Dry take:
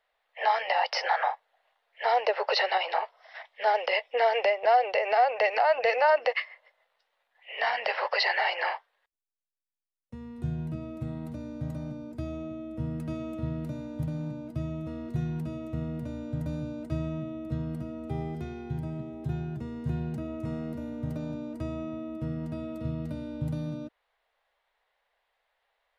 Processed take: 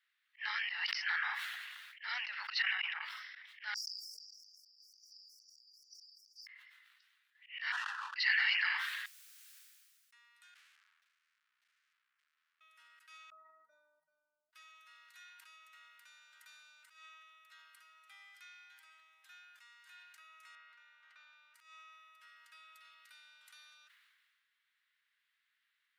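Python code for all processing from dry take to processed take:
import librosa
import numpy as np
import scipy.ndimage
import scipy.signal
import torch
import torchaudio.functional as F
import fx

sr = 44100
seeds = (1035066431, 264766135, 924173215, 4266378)

y = fx.chain(x, sr, fx.savgol(points=25),
    fx.over_compress(threshold_db=-32.0, ratio=-0.5), at=(2.62, 3.02))
y = fx.chain(y, sr, fx.over_compress(threshold_db=-30.0, ratio=-1.0),
    fx.brickwall_bandstop(low_hz=470.0, high_hz=4600.0),
    fx.spectral_comp(ratio=2.0), at=(3.74, 6.47))
y = fx.chain(y, sr, fx.halfwave_hold(),
    fx.cheby1_lowpass(hz=1400.0, order=2),
    fx.fixed_phaser(hz=430.0, stages=8), at=(7.72, 8.16))
y = fx.chain(y, sr, fx.cheby2_lowpass(hz=1200.0, order=4, stop_db=80),
    fx.leveller(passes=1), at=(10.54, 12.61))
y = fx.chain(y, sr, fx.spec_expand(power=2.7),
    fx.cheby1_bandstop(low_hz=1900.0, high_hz=4400.0, order=2),
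    fx.peak_eq(hz=390.0, db=-11.5, octaves=1.0), at=(13.3, 14.53))
y = fx.chain(y, sr, fx.lowpass(hz=3000.0, slope=12),
    fx.low_shelf(hz=270.0, db=-8.5), at=(20.55, 21.54))
y = scipy.signal.sosfilt(scipy.signal.butter(6, 1400.0, 'highpass', fs=sr, output='sos'), y)
y = fx.auto_swell(y, sr, attack_ms=142.0)
y = fx.sustainer(y, sr, db_per_s=29.0)
y = y * 10.0 ** (-2.0 / 20.0)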